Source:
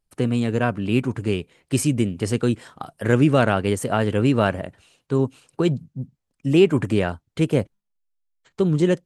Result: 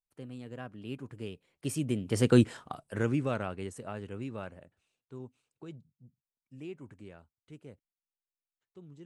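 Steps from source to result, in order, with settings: Doppler pass-by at 2.4, 16 m/s, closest 2.6 m

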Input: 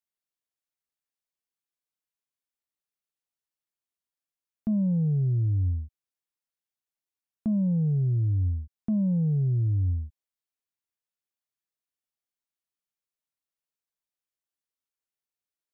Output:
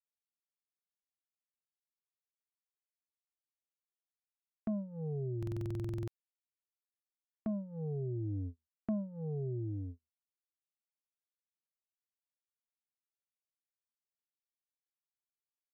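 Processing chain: HPF 270 Hz 12 dB/oct; air absorption 200 m; comb 2.7 ms, depth 66%; gate -40 dBFS, range -45 dB; vocal rider within 5 dB 0.5 s; stuck buffer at 5.38, samples 2048, times 14; mismatched tape noise reduction encoder only; gain +2.5 dB

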